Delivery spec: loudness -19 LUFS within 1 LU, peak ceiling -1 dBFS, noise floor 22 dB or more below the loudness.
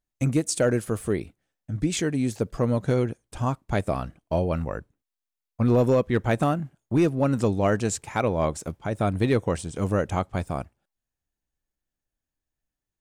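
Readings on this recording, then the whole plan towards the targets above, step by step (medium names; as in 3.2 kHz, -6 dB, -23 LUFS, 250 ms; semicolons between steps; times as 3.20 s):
clipped samples 0.3%; clipping level -13.5 dBFS; loudness -25.5 LUFS; peak level -13.5 dBFS; loudness target -19.0 LUFS
-> clip repair -13.5 dBFS; trim +6.5 dB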